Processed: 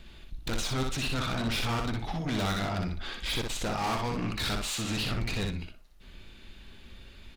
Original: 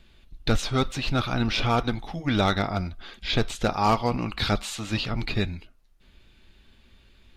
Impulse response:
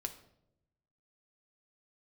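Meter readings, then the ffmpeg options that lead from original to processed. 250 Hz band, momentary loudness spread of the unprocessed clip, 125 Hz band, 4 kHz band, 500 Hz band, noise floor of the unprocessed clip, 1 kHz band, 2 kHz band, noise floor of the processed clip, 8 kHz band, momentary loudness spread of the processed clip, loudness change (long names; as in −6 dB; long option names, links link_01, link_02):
−5.5 dB, 8 LU, −5.0 dB, −3.0 dB, −7.5 dB, −58 dBFS, −7.0 dB, −4.0 dB, −52 dBFS, +1.5 dB, 12 LU, −5.0 dB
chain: -filter_complex "[0:a]asplit=2[link_01][link_02];[link_02]acompressor=threshold=-35dB:ratio=6,volume=-2dB[link_03];[link_01][link_03]amix=inputs=2:normalize=0,asoftclip=type=tanh:threshold=-29dB,aecho=1:1:61|122|183:0.631|0.114|0.0204"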